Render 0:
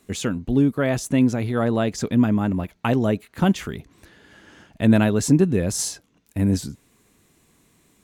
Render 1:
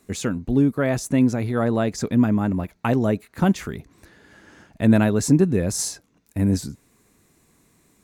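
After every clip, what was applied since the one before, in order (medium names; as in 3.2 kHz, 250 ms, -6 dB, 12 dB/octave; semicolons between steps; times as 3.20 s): peaking EQ 3.1 kHz -6.5 dB 0.44 oct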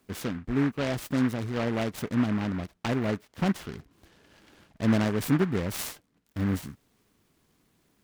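delay time shaken by noise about 1.3 kHz, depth 0.11 ms; trim -7.5 dB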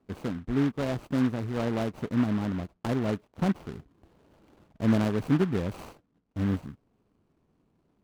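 median filter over 25 samples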